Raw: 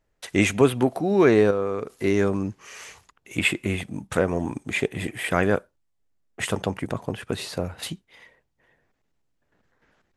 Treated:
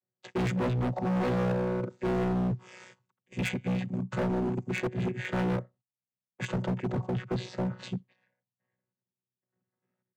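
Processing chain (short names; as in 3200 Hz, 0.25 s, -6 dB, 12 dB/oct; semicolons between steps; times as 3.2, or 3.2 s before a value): chord vocoder bare fifth, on B2; gate -51 dBFS, range -17 dB; in parallel at +2 dB: limiter -16 dBFS, peak gain reduction 9 dB; on the sum: overloaded stage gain 20.5 dB; gain -5.5 dB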